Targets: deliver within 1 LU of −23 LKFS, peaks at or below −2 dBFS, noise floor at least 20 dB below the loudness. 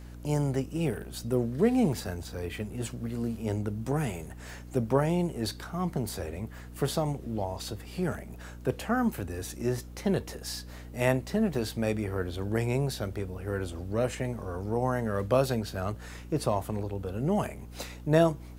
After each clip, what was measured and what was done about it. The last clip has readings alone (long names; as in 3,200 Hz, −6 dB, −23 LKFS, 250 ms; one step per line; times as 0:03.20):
number of dropouts 2; longest dropout 2.0 ms; mains hum 60 Hz; hum harmonics up to 300 Hz; level of the hum −42 dBFS; integrated loudness −31.0 LKFS; sample peak −9.0 dBFS; target loudness −23.0 LKFS
→ repair the gap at 0:04.31/0:11.55, 2 ms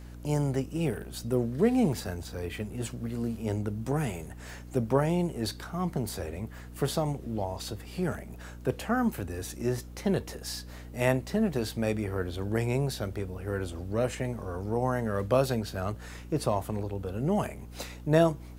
number of dropouts 0; mains hum 60 Hz; hum harmonics up to 300 Hz; level of the hum −42 dBFS
→ mains-hum notches 60/120/180/240/300 Hz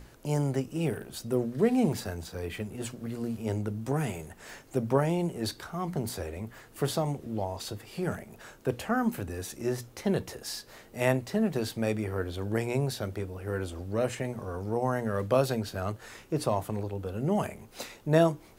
mains hum none found; integrated loudness −31.5 LKFS; sample peak −9.0 dBFS; target loudness −23.0 LKFS
→ level +8.5 dB
brickwall limiter −2 dBFS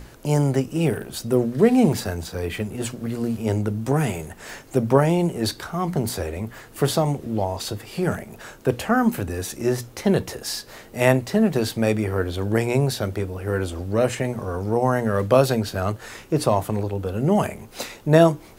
integrated loudness −23.0 LKFS; sample peak −2.0 dBFS; background noise floor −46 dBFS